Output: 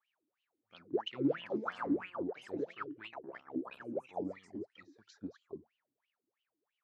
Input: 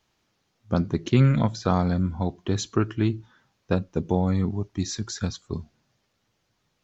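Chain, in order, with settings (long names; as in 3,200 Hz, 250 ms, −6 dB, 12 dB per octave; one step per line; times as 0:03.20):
delay with pitch and tempo change per echo 395 ms, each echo +4 semitones, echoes 3
LFO wah 3 Hz 280–3,000 Hz, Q 16
0:03.13–0:03.81: ring modulation 33 Hz
level +2 dB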